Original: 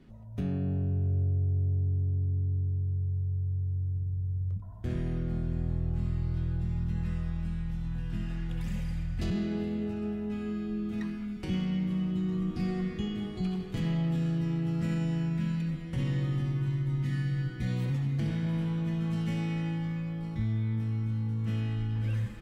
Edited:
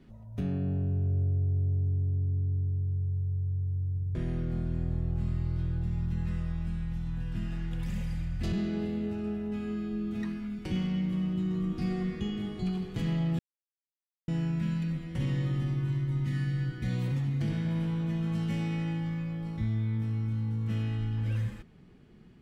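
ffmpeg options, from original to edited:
-filter_complex "[0:a]asplit=4[s0][s1][s2][s3];[s0]atrim=end=4.152[s4];[s1]atrim=start=4.928:end=14.17,asetpts=PTS-STARTPTS,afade=t=out:st=9.238:d=0.004:c=hsin[s5];[s2]atrim=start=14.17:end=15.06,asetpts=PTS-STARTPTS,volume=0[s6];[s3]atrim=start=15.06,asetpts=PTS-STARTPTS,afade=t=in:d=0.004:c=hsin[s7];[s5][s6][s7]concat=n=3:v=0:a=1[s8];[s4][s8]acrossfade=d=0.004:c1=hsin:c2=hsin"

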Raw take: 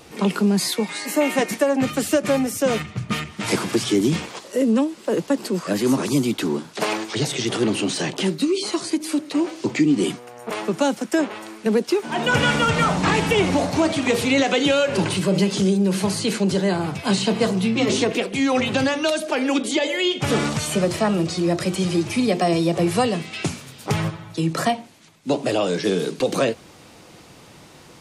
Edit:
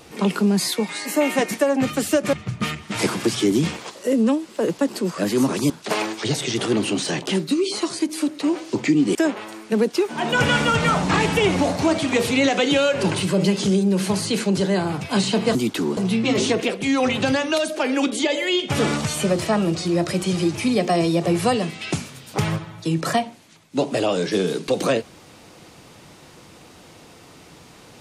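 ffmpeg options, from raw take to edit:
-filter_complex "[0:a]asplit=6[s0][s1][s2][s3][s4][s5];[s0]atrim=end=2.332[s6];[s1]atrim=start=2.818:end=6.192[s7];[s2]atrim=start=6.608:end=10.062[s8];[s3]atrim=start=11.088:end=17.492[s9];[s4]atrim=start=6.188:end=6.612[s10];[s5]atrim=start=17.488[s11];[s6][s7]acrossfade=d=0.004:c1=hsin:c2=hsin[s12];[s12][s8]acrossfade=d=0.004:c1=hsin:c2=hsin[s13];[s13][s9]acrossfade=d=0.004:c1=hsin:c2=hsin[s14];[s14][s10]acrossfade=d=0.004:c1=hsin:c2=hsin[s15];[s15][s11]acrossfade=d=0.004:c1=hsin:c2=hsin"

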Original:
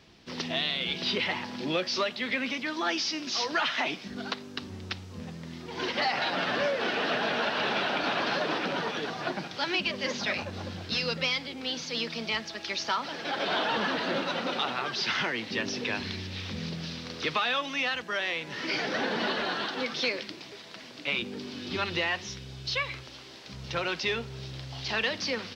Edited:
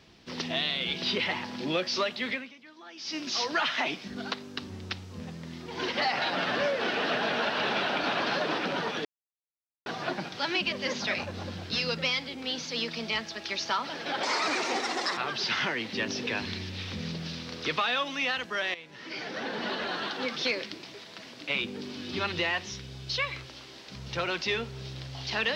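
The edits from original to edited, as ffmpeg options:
-filter_complex "[0:a]asplit=7[s0][s1][s2][s3][s4][s5][s6];[s0]atrim=end=2.55,asetpts=PTS-STARTPTS,afade=t=out:st=2.3:d=0.25:c=qua:silence=0.112202[s7];[s1]atrim=start=2.55:end=2.91,asetpts=PTS-STARTPTS,volume=0.112[s8];[s2]atrim=start=2.91:end=9.05,asetpts=PTS-STARTPTS,afade=t=in:d=0.25:c=qua:silence=0.112202,afade=t=out:st=6.136:d=0.004:c=hsin,apad=pad_dur=0.81[s9];[s3]atrim=start=9.05:end=13.424,asetpts=PTS-STARTPTS,afade=t=in:d=0.004:c=hsin[s10];[s4]atrim=start=13.42:end=14.75,asetpts=PTS-STARTPTS,asetrate=62181,aresample=44100[s11];[s5]atrim=start=14.746:end=18.32,asetpts=PTS-STARTPTS,afade=t=out:st=3.57:d=0.004:c=hsin:silence=0.223872[s12];[s6]atrim=start=18.32,asetpts=PTS-STARTPTS,afade=t=in:d=1.6:silence=0.223872[s13];[s7][s8][s9][s10]concat=n=4:v=0:a=1[s14];[s14][s11]acrossfade=d=0.004:c1=hsin:c2=hsin[s15];[s12][s13]concat=n=2:v=0:a=1[s16];[s15][s16]acrossfade=d=0.004:c1=hsin:c2=hsin"

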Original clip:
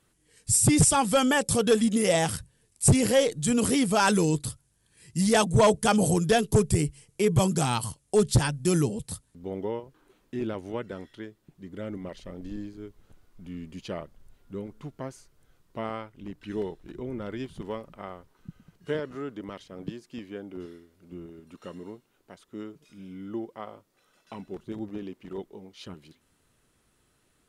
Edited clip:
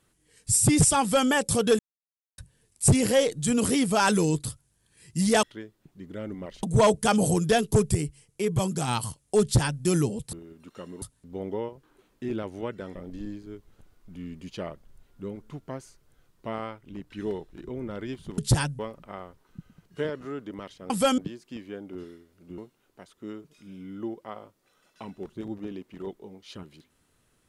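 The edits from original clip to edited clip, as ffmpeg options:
-filter_complex "[0:a]asplit=15[s0][s1][s2][s3][s4][s5][s6][s7][s8][s9][s10][s11][s12][s13][s14];[s0]atrim=end=1.79,asetpts=PTS-STARTPTS,afade=t=out:st=1.786:d=0.004:c=hsin[s15];[s1]atrim=start=1.79:end=2.38,asetpts=PTS-STARTPTS,volume=0[s16];[s2]atrim=start=2.38:end=5.432,asetpts=PTS-STARTPTS,afade=t=in:d=0.004:c=hsin[s17];[s3]atrim=start=11.058:end=12.262[s18];[s4]atrim=start=5.428:end=6.752[s19];[s5]atrim=start=6.748:end=7.682,asetpts=PTS-STARTPTS,volume=0.668[s20];[s6]atrim=start=7.678:end=9.132[s21];[s7]atrim=start=21.198:end=21.892[s22];[s8]atrim=start=9.128:end=11.062[s23];[s9]atrim=start=12.258:end=17.692[s24];[s10]atrim=start=8.218:end=8.632[s25];[s11]atrim=start=17.688:end=19.802[s26];[s12]atrim=start=1.008:end=1.292[s27];[s13]atrim=start=19.798:end=21.202[s28];[s14]atrim=start=21.888[s29];[s15][s16][s17]concat=n=3:v=0:a=1[s30];[s30][s18]acrossfade=d=0.004:c1=hsin:c2=hsin[s31];[s31][s19]acrossfade=d=0.004:c1=hsin:c2=hsin[s32];[s32][s20]acrossfade=d=0.004:c1=hsin:c2=hsin[s33];[s33][s21]acrossfade=d=0.004:c1=hsin:c2=hsin[s34];[s34][s22]acrossfade=d=0.004:c1=hsin:c2=hsin[s35];[s35][s23]acrossfade=d=0.004:c1=hsin:c2=hsin[s36];[s36][s24]acrossfade=d=0.004:c1=hsin:c2=hsin[s37];[s37][s25]acrossfade=d=0.004:c1=hsin:c2=hsin[s38];[s38][s26]acrossfade=d=0.004:c1=hsin:c2=hsin[s39];[s39][s27]acrossfade=d=0.004:c1=hsin:c2=hsin[s40];[s40][s28]acrossfade=d=0.004:c1=hsin:c2=hsin[s41];[s41][s29]acrossfade=d=0.004:c1=hsin:c2=hsin"

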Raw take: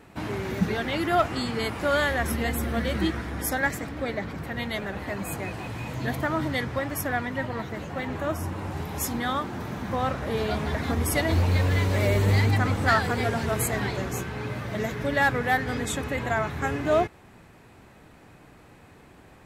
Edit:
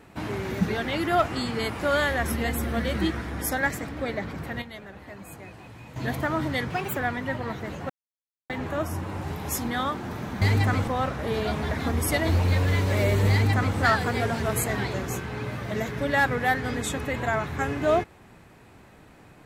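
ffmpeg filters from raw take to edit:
-filter_complex "[0:a]asplit=8[s0][s1][s2][s3][s4][s5][s6][s7];[s0]atrim=end=4.62,asetpts=PTS-STARTPTS,afade=t=out:st=4.43:d=0.19:c=log:silence=0.298538[s8];[s1]atrim=start=4.62:end=5.96,asetpts=PTS-STARTPTS,volume=0.299[s9];[s2]atrim=start=5.96:end=6.704,asetpts=PTS-STARTPTS,afade=t=in:d=0.19:c=log:silence=0.298538[s10];[s3]atrim=start=6.7:end=7.06,asetpts=PTS-STARTPTS,asetrate=59535,aresample=44100[s11];[s4]atrim=start=7.056:end=7.99,asetpts=PTS-STARTPTS,afade=t=out:st=0.93:d=0.004:c=hsin,apad=pad_dur=0.6[s12];[s5]atrim=start=7.99:end=9.912,asetpts=PTS-STARTPTS,afade=t=in:d=0.004:c=hsin[s13];[s6]atrim=start=12.338:end=12.802[s14];[s7]atrim=start=9.908[s15];[s8][s9][s10]concat=n=3:v=0:a=1[s16];[s16][s11]acrossfade=d=0.004:c1=hsin:c2=hsin[s17];[s12][s13]concat=n=2:v=0:a=1[s18];[s17][s18]acrossfade=d=0.004:c1=hsin:c2=hsin[s19];[s19][s14]acrossfade=d=0.004:c1=hsin:c2=hsin[s20];[s20][s15]acrossfade=d=0.004:c1=hsin:c2=hsin"

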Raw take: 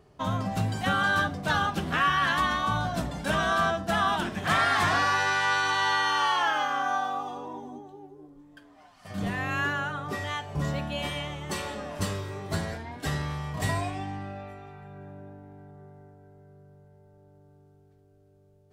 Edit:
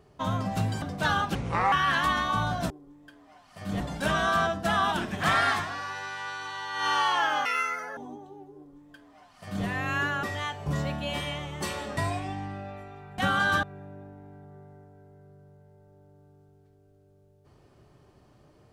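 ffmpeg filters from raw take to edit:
-filter_complex "[0:a]asplit=14[s0][s1][s2][s3][s4][s5][s6][s7][s8][s9][s10][s11][s12][s13];[s0]atrim=end=0.822[s14];[s1]atrim=start=1.268:end=1.804[s15];[s2]atrim=start=1.8:end=2.06,asetpts=PTS-STARTPTS,asetrate=30870,aresample=44100,atrim=end_sample=16380,asetpts=PTS-STARTPTS[s16];[s3]atrim=start=2.056:end=3.042[s17];[s4]atrim=start=8.188:end=9.292[s18];[s5]atrim=start=3.038:end=4.94,asetpts=PTS-STARTPTS,afade=t=out:st=1.702:d=0.2:c=qua:silence=0.281838[s19];[s6]atrim=start=4.94:end=5.91,asetpts=PTS-STARTPTS,volume=0.282[s20];[s7]atrim=start=5.91:end=6.694,asetpts=PTS-STARTPTS,afade=t=in:d=0.2:c=qua:silence=0.281838[s21];[s8]atrim=start=6.69:end=7.6,asetpts=PTS-STARTPTS,asetrate=77175,aresample=44100[s22];[s9]atrim=start=7.596:end=9.862[s23];[s10]atrim=start=10.118:end=11.862[s24];[s11]atrim=start=13.678:end=14.892[s25];[s12]atrim=start=0.818:end=1.272[s26];[s13]atrim=start=14.888[s27];[s14][s15]acrossfade=d=0.004:c1=hsin:c2=hsin[s28];[s28][s16]acrossfade=d=0.004:c1=hsin:c2=hsin[s29];[s29][s17]acrossfade=d=0.004:c1=hsin:c2=hsin[s30];[s30][s18]acrossfade=d=0.004:c1=hsin:c2=hsin[s31];[s19][s20][s21]concat=n=3:v=0:a=1[s32];[s31][s32]acrossfade=d=0.004:c1=hsin:c2=hsin[s33];[s33][s22]acrossfade=d=0.004:c1=hsin:c2=hsin[s34];[s34][s23]acrossfade=d=0.004:c1=hsin:c2=hsin[s35];[s35][s24]acrossfade=d=0.004:c1=hsin:c2=hsin[s36];[s36][s25]acrossfade=d=0.004:c1=hsin:c2=hsin[s37];[s37][s26]acrossfade=d=0.004:c1=hsin:c2=hsin[s38];[s38][s27]acrossfade=d=0.004:c1=hsin:c2=hsin"

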